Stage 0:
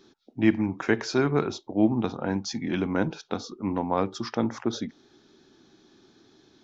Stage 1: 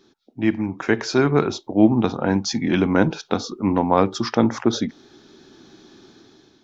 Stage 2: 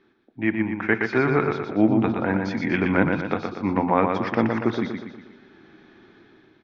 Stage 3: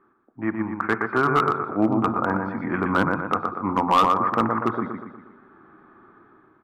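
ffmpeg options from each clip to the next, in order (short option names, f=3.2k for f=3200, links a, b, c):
-af "dynaudnorm=f=360:g=5:m=11dB"
-filter_complex "[0:a]lowpass=f=2.1k:t=q:w=2.5,asplit=2[a][b];[b]aecho=0:1:120|240|360|480|600|720:0.562|0.27|0.13|0.0622|0.0299|0.0143[c];[a][c]amix=inputs=2:normalize=0,volume=-4.5dB"
-af "lowpass=f=1.2k:t=q:w=6,volume=8.5dB,asoftclip=hard,volume=-8.5dB,volume=-3dB"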